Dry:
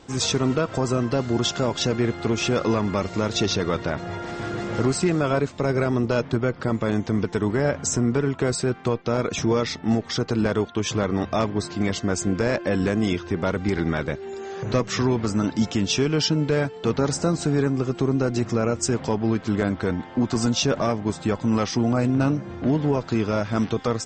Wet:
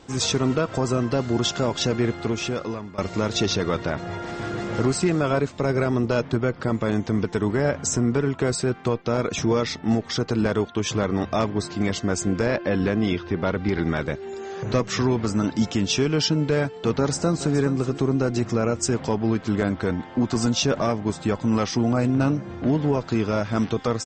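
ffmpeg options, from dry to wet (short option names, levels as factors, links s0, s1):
-filter_complex "[0:a]asettb=1/sr,asplit=3[s0][s1][s2];[s0]atrim=end=12.464[s3];[s1]atrim=start=12.46:end=13.83,asetpts=PTS-STARTPTS,afade=t=in:d=0.004:c=qsin,afade=t=out:st=1.366:d=0.004:c=qsin,lowpass=f=5100:w=0.5412,lowpass=f=5100:w=1.3066[s4];[s2]atrim=start=13.826[s5];[s3][s4]acrossfade=d=0.004:c1=hsin:c2=qsin[s6];[s6][s5]acrossfade=d=0.004:c1=qsin:c2=hsin,asplit=2[s7][s8];[s8]afade=t=in:st=16.98:d=0.01,afade=t=out:st=17.55:d=0.01,aecho=0:1:420|840:0.199526|0.0399052[s9];[s7][s9]amix=inputs=2:normalize=0,asplit=2[s10][s11];[s10]atrim=end=2.98,asetpts=PTS-STARTPTS,afade=t=out:st=2.09:d=0.89:silence=0.11885[s12];[s11]atrim=start=2.98,asetpts=PTS-STARTPTS,afade=t=in:d=0.004:c=hsin:silence=0.11885[s13];[s12][s13]concat=n=2:v=0:a=1"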